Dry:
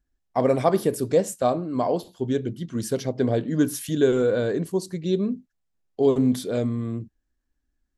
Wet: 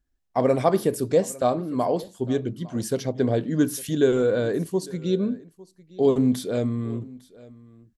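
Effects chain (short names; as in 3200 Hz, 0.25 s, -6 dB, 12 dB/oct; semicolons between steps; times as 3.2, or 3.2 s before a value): echo 0.854 s -21.5 dB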